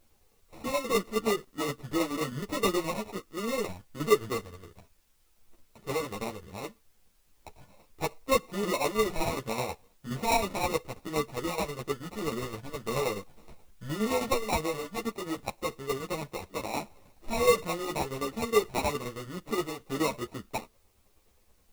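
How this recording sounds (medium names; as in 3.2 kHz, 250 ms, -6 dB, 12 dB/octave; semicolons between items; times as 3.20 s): aliases and images of a low sample rate 1.6 kHz, jitter 0%; tremolo saw down 9.5 Hz, depth 60%; a quantiser's noise floor 12-bit, dither triangular; a shimmering, thickened sound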